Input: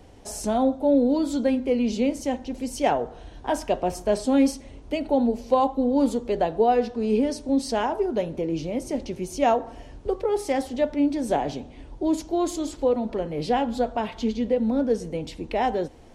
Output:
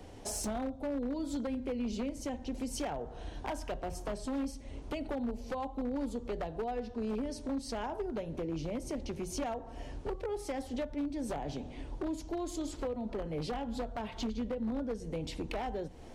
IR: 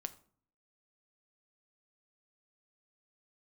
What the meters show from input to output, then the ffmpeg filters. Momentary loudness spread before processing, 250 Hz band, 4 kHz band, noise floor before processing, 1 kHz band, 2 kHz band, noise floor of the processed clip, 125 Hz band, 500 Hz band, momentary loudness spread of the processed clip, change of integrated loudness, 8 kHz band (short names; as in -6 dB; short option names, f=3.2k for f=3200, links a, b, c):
10 LU, -12.5 dB, -9.0 dB, -45 dBFS, -15.0 dB, -10.5 dB, -47 dBFS, -5.5 dB, -14.0 dB, 4 LU, -13.0 dB, -6.5 dB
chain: -filter_complex "[0:a]acrossover=split=120[a][b];[b]acompressor=threshold=-34dB:ratio=8[c];[a][c]amix=inputs=2:normalize=0,aeval=exprs='0.0355*(abs(mod(val(0)/0.0355+3,4)-2)-1)':c=same,bandreject=f=60:t=h:w=6,bandreject=f=120:t=h:w=6,bandreject=f=180:t=h:w=6"